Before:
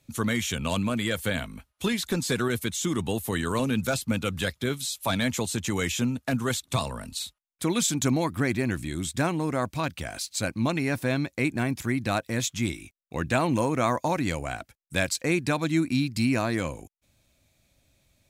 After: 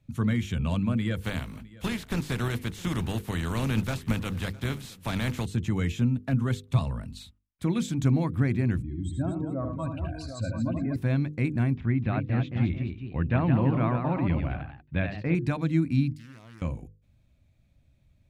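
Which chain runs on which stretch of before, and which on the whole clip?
1.20–5.44 s: spectral contrast reduction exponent 0.5 + delay 659 ms -21 dB
8.82–10.96 s: spectral contrast enhancement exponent 2.3 + peaking EQ 160 Hz -8.5 dB 1.1 oct + multi-tap echo 75/109/232/420/748 ms -6/-12/-8.5/-19.5/-8.5 dB
11.76–15.35 s: low-pass 3.3 kHz 24 dB/octave + ever faster or slower copies 252 ms, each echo +1 st, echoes 2, each echo -6 dB
16.12–16.62 s: pre-emphasis filter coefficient 0.9 + compression 3:1, threshold -42 dBFS + loudspeaker Doppler distortion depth 0.34 ms
whole clip: tone controls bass +14 dB, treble -11 dB; hum notches 50/100/150/200/250/300/350/400/450/500 Hz; trim -6.5 dB

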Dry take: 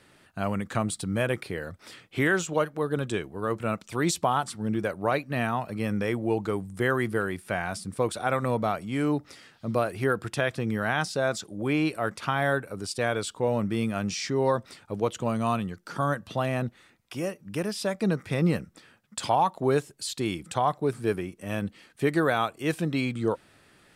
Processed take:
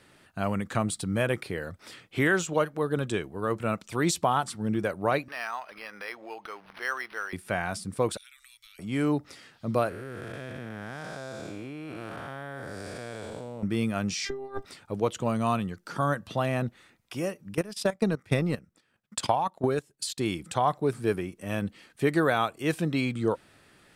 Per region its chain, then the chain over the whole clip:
5.28–7.33 s: high-pass 1.1 kHz + upward compressor, threshold -36 dBFS + decimation joined by straight lines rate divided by 6×
8.17–8.79 s: inverse Chebyshev band-stop 130–730 Hz, stop band 70 dB + compression 10:1, threshold -48 dBFS
9.89–13.63 s: spectral blur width 378 ms + level held to a coarse grid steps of 13 dB
14.25–14.65 s: compressor with a negative ratio -30 dBFS, ratio -0.5 + peaking EQ 7.9 kHz -8 dB 1.6 oct + robot voice 398 Hz
17.54–20.18 s: level held to a coarse grid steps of 9 dB + transient shaper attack +7 dB, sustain -9 dB
whole clip: none

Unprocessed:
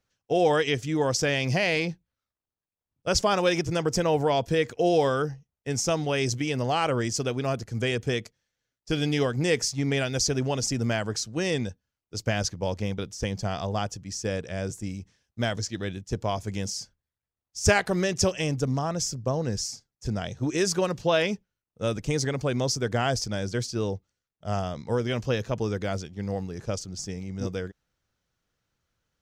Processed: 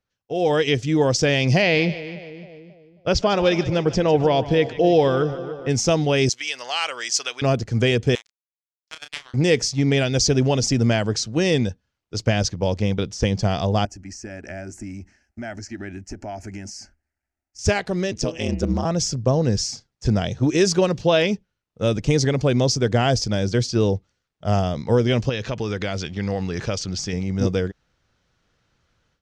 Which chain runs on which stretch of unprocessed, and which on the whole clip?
1.62–5.69 s: low-pass 4.7 kHz + two-band feedback delay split 640 Hz, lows 269 ms, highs 149 ms, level -14 dB
6.29–7.42 s: high-pass 1.4 kHz + treble shelf 6 kHz +5 dB
8.15–9.34 s: steep high-pass 1 kHz + power-law waveshaper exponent 3 + doubling 31 ms -7.5 dB
13.85–17.59 s: compression, threshold -37 dBFS + static phaser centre 720 Hz, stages 8
18.11–18.85 s: ring modulator 57 Hz + de-hum 164.4 Hz, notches 18
25.29–27.13 s: peaking EQ 2.7 kHz +8.5 dB 2.5 oct + compression 2.5:1, threshold -35 dBFS
whole clip: low-pass 5.6 kHz 12 dB/octave; dynamic bell 1.3 kHz, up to -6 dB, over -41 dBFS, Q 0.87; level rider gain up to 16 dB; trim -4 dB

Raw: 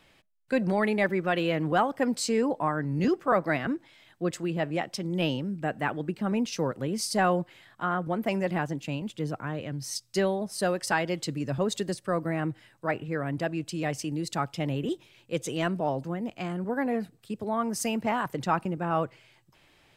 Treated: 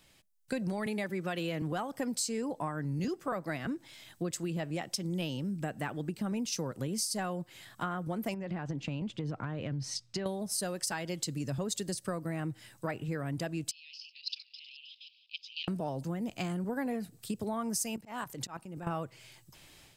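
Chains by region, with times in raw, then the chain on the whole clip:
0.86–1.62 s: high-pass 51 Hz + three bands compressed up and down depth 40%
8.34–10.26 s: low-pass 2.8 kHz + compression, threshold -32 dBFS
13.71–15.68 s: backward echo that repeats 157 ms, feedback 49%, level -10.5 dB + Chebyshev band-pass 2.5–5.1 kHz, order 4 + level held to a coarse grid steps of 14 dB
17.96–18.87 s: peaking EQ 95 Hz -4 dB 2.7 oct + level held to a coarse grid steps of 15 dB + slow attack 294 ms
whole clip: level rider gain up to 8 dB; tone controls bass +5 dB, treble +13 dB; compression 6:1, threshold -25 dBFS; trim -7 dB

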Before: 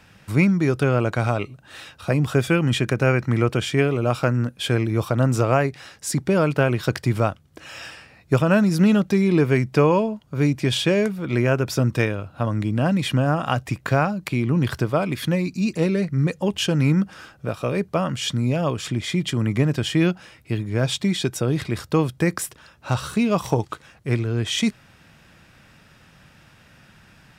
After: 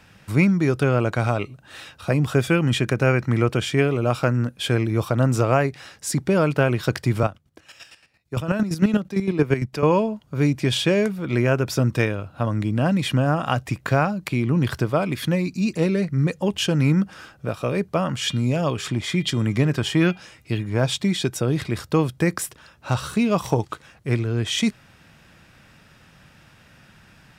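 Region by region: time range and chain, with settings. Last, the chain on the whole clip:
7.23–9.83 s: square tremolo 8.8 Hz, depth 65%, duty 30% + three bands expanded up and down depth 40%
18.08–20.86 s: de-hum 402.9 Hz, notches 11 + sweeping bell 1.1 Hz 850–7600 Hz +7 dB
whole clip: none

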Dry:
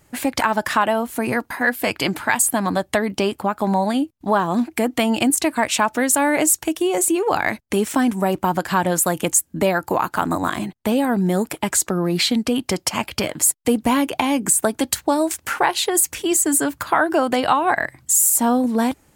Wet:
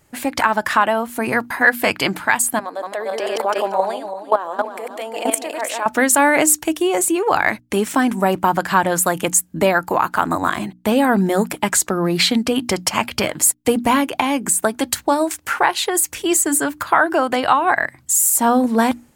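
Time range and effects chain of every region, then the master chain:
2.59–5.86 s: backward echo that repeats 172 ms, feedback 44%, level -4 dB + level held to a coarse grid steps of 15 dB + resonant high-pass 510 Hz, resonance Q 2.4
whole clip: hum notches 60/120/180/240/300 Hz; dynamic bell 1.4 kHz, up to +5 dB, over -30 dBFS, Q 0.7; level rider; trim -1 dB

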